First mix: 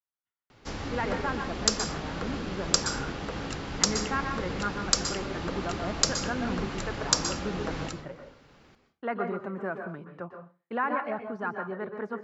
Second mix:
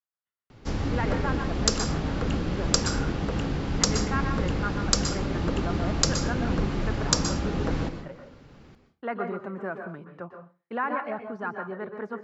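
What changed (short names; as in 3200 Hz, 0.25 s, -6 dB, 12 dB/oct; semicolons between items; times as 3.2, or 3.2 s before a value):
first sound: add low shelf 400 Hz +10.5 dB; second sound: entry -1.75 s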